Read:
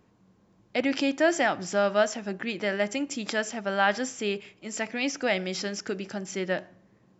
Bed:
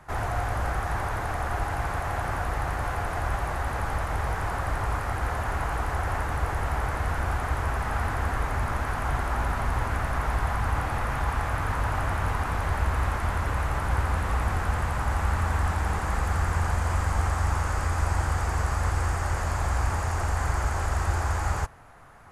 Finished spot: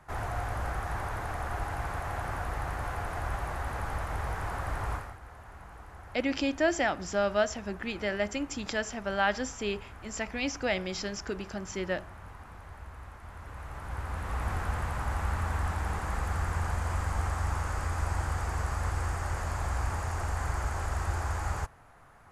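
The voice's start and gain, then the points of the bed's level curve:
5.40 s, -3.5 dB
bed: 4.94 s -5.5 dB
5.19 s -20 dB
13.20 s -20 dB
14.50 s -5.5 dB

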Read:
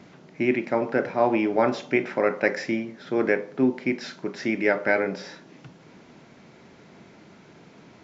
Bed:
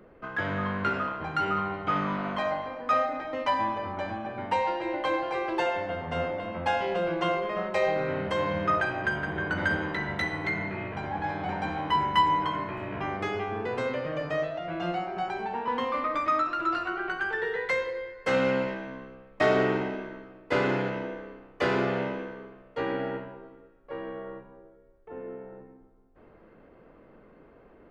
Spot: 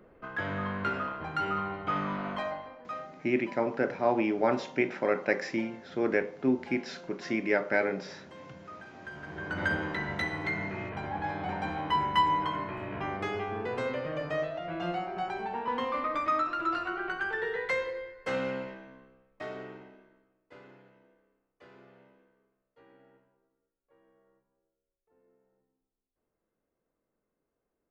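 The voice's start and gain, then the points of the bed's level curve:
2.85 s, -5.0 dB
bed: 2.35 s -3.5 dB
3.32 s -21.5 dB
8.83 s -21.5 dB
9.65 s -2.5 dB
17.88 s -2.5 dB
20.84 s -29.5 dB

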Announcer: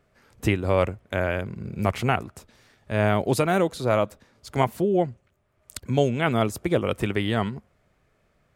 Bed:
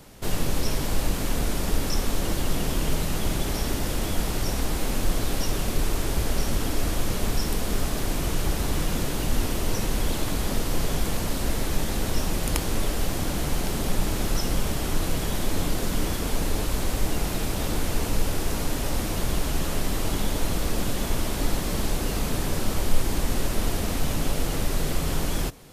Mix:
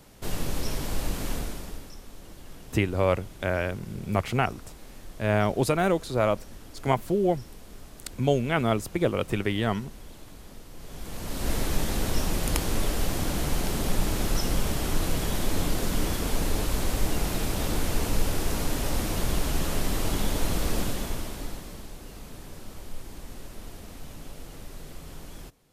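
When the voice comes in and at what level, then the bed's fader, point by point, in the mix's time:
2.30 s, -2.0 dB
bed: 1.33 s -4.5 dB
1.97 s -20 dB
10.75 s -20 dB
11.52 s -1 dB
20.78 s -1 dB
21.88 s -16.5 dB

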